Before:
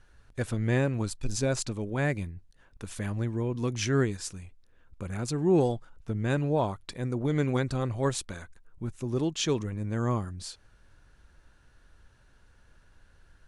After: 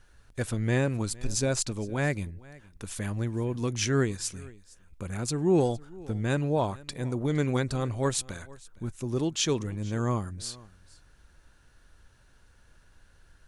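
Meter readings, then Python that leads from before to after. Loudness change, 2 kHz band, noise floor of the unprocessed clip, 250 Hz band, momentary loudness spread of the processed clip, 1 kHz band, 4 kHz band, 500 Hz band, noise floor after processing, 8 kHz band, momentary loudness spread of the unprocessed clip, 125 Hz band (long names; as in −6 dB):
+0.5 dB, +1.0 dB, −61 dBFS, 0.0 dB, 14 LU, +0.5 dB, +2.5 dB, 0.0 dB, −59 dBFS, +4.5 dB, 14 LU, 0.0 dB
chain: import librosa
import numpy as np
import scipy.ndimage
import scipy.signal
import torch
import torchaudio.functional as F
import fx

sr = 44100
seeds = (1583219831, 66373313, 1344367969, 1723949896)

p1 = fx.high_shelf(x, sr, hz=4800.0, db=6.5)
y = p1 + fx.echo_single(p1, sr, ms=462, db=-22.0, dry=0)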